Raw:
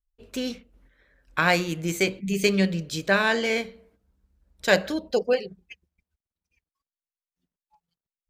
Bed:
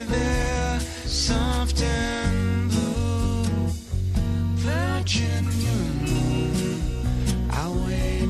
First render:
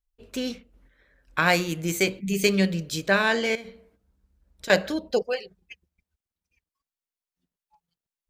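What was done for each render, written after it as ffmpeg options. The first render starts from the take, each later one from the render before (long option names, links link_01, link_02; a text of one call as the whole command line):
ffmpeg -i in.wav -filter_complex "[0:a]asettb=1/sr,asplit=3[link_01][link_02][link_03];[link_01]atrim=end=1.464[link_04];[link_02]atrim=start=1.46:end=3,asetpts=PTS-STARTPTS,afade=type=in:duration=0.004:curve=qsin,afade=type=out:start_time=1.536:duration=0.004:curve=qsin,highshelf=frequency=8800:gain=6.5[link_05];[link_03]atrim=start=2.996[link_06];[link_04][link_05]acrossfade=duration=0.004:curve1=hsin:curve2=qsin[link_07];[link_07][link_06]acrossfade=duration=0.004:curve1=qsin:curve2=hsin,asettb=1/sr,asplit=3[link_08][link_09][link_10];[link_08]atrim=end=3.554[link_11];[link_09]atrim=start=3.55:end=4.7,asetpts=PTS-STARTPTS,afade=type=in:duration=0.004:curve=qsin,afade=type=out:start_time=1.146:duration=0.004:curve=qsin,acompressor=threshold=-34dB:ratio=16:attack=3.2:release=140:knee=1:detection=peak[link_12];[link_10]atrim=start=4.696[link_13];[link_11][link_12]acrossfade=duration=0.004:curve1=hsin:curve2=qsin[link_14];[link_14][link_13]acrossfade=duration=0.004:curve1=qsin:curve2=hsin,asettb=1/sr,asplit=3[link_15][link_16][link_17];[link_15]atrim=end=5.224[link_18];[link_16]atrim=start=5.22:end=5.62,asetpts=PTS-STARTPTS,afade=type=in:duration=0.004:curve=qsin,afade=type=out:start_time=0.396:duration=0.004:curve=qsin,equalizer=frequency=210:width=0.61:gain=-14.5[link_19];[link_17]atrim=start=5.616[link_20];[link_18][link_19]acrossfade=duration=0.004:curve1=hsin:curve2=qsin[link_21];[link_21][link_20]acrossfade=duration=0.004:curve1=qsin:curve2=hsin" out.wav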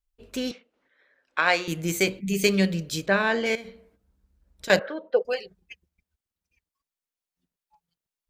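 ffmpeg -i in.wav -filter_complex "[0:a]asettb=1/sr,asplit=3[link_01][link_02][link_03];[link_01]atrim=end=0.514[link_04];[link_02]atrim=start=0.51:end=1.68,asetpts=PTS-STARTPTS,afade=type=in:duration=0.004:curve=qsin,afade=type=out:start_time=1.166:duration=0.004:curve=qsin,highpass=440,lowpass=5100[link_05];[link_03]atrim=start=1.676[link_06];[link_04][link_05]acrossfade=duration=0.004:curve1=hsin:curve2=qsin[link_07];[link_07][link_06]acrossfade=duration=0.004:curve1=qsin:curve2=hsin,asplit=3[link_08][link_09][link_10];[link_08]afade=type=out:start_time=3.05:duration=0.02[link_11];[link_09]lowpass=frequency=2300:poles=1,afade=type=in:start_time=3.05:duration=0.02,afade=type=out:start_time=3.45:duration=0.02[link_12];[link_10]afade=type=in:start_time=3.45:duration=0.02[link_13];[link_11][link_12][link_13]amix=inputs=3:normalize=0,asettb=1/sr,asplit=3[link_14][link_15][link_16];[link_14]atrim=end=4.794[link_17];[link_15]atrim=start=4.79:end=5.25,asetpts=PTS-STARTPTS,afade=type=in:duration=0.004:curve=qsin,afade=type=out:start_time=0.456:duration=0.004:curve=qsin,highpass=480,equalizer=frequency=510:width_type=q:width=4:gain=7,equalizer=frequency=770:width_type=q:width=4:gain=-4,equalizer=frequency=1400:width_type=q:width=4:gain=6,equalizer=frequency=2500:width_type=q:width=4:gain=-8,lowpass=frequency=2600:width=0.5412,lowpass=frequency=2600:width=1.3066[link_18];[link_16]atrim=start=5.246[link_19];[link_17][link_18]acrossfade=duration=0.004:curve1=hsin:curve2=qsin[link_20];[link_20][link_19]acrossfade=duration=0.004:curve1=qsin:curve2=hsin" out.wav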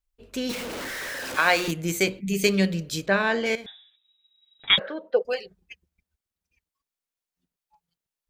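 ffmpeg -i in.wav -filter_complex "[0:a]asettb=1/sr,asplit=3[link_01][link_02][link_03];[link_01]atrim=end=0.494[link_04];[link_02]atrim=start=0.49:end=1.71,asetpts=PTS-STARTPTS,afade=type=in:duration=0.004:curve=qsin,afade=type=out:start_time=1.216:duration=0.004:curve=qsin,aeval=exprs='val(0)+0.5*0.0422*sgn(val(0))':channel_layout=same[link_05];[link_03]atrim=start=1.706[link_06];[link_04][link_05]acrossfade=duration=0.004:curve1=hsin:curve2=qsin[link_07];[link_07][link_06]acrossfade=duration=0.004:curve1=qsin:curve2=hsin,asettb=1/sr,asplit=3[link_08][link_09][link_10];[link_08]atrim=end=3.664[link_11];[link_09]atrim=start=3.66:end=4.78,asetpts=PTS-STARTPTS,afade=type=in:duration=0.004:curve=qsin,afade=type=out:start_time=1.116:duration=0.004:curve=qsin,lowpass=frequency=3300:width_type=q:width=0.5098,lowpass=frequency=3300:width_type=q:width=0.6013,lowpass=frequency=3300:width_type=q:width=0.9,lowpass=frequency=3300:width_type=q:width=2.563,afreqshift=-3900[link_12];[link_10]atrim=start=4.776[link_13];[link_11][link_12]acrossfade=duration=0.004:curve1=hsin:curve2=qsin[link_14];[link_14][link_13]acrossfade=duration=0.004:curve1=qsin:curve2=hsin" out.wav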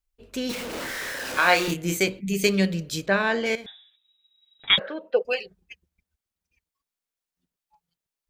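ffmpeg -i in.wav -filter_complex "[0:a]asettb=1/sr,asplit=3[link_01][link_02][link_03];[link_01]atrim=end=0.714[link_04];[link_02]atrim=start=0.71:end=1.97,asetpts=PTS-STARTPTS,afade=type=in:duration=0.004:curve=qsin,afade=type=out:start_time=1.256:duration=0.004:curve=qsin,asplit=2[link_05][link_06];[link_06]adelay=28,volume=-5dB[link_07];[link_05][link_07]amix=inputs=2:normalize=0,atrim=end_sample=55566[link_08];[link_03]atrim=start=1.966[link_09];[link_04][link_08]acrossfade=duration=0.004:curve1=hsin:curve2=qsin[link_10];[link_10][link_09]acrossfade=duration=0.004:curve1=qsin:curve2=hsin,asettb=1/sr,asplit=3[link_11][link_12][link_13];[link_11]atrim=end=4.914[link_14];[link_12]atrim=start=4.91:end=5.43,asetpts=PTS-STARTPTS,afade=type=in:duration=0.004:curve=qsin,afade=type=out:start_time=0.516:duration=0.004:curve=qsin,equalizer=frequency=2600:width=5.5:gain=12.5[link_15];[link_13]atrim=start=5.426[link_16];[link_14][link_15]acrossfade=duration=0.004:curve1=hsin:curve2=qsin[link_17];[link_17][link_16]acrossfade=duration=0.004:curve1=qsin:curve2=hsin" out.wav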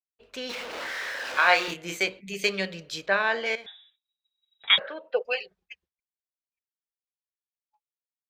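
ffmpeg -i in.wav -filter_complex "[0:a]agate=range=-33dB:threshold=-54dB:ratio=3:detection=peak,acrossover=split=480 5400:gain=0.178 1 0.2[link_01][link_02][link_03];[link_01][link_02][link_03]amix=inputs=3:normalize=0" out.wav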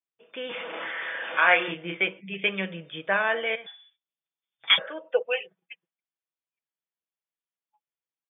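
ffmpeg -i in.wav -af "afftfilt=real='re*between(b*sr/4096,120,3600)':imag='im*between(b*sr/4096,120,3600)':win_size=4096:overlap=0.75,aecho=1:1:6.1:0.4" out.wav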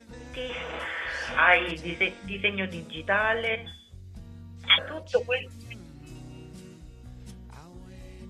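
ffmpeg -i in.wav -i bed.wav -filter_complex "[1:a]volume=-21dB[link_01];[0:a][link_01]amix=inputs=2:normalize=0" out.wav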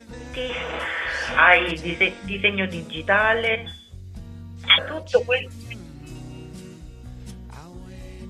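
ffmpeg -i in.wav -af "volume=6dB,alimiter=limit=-2dB:level=0:latency=1" out.wav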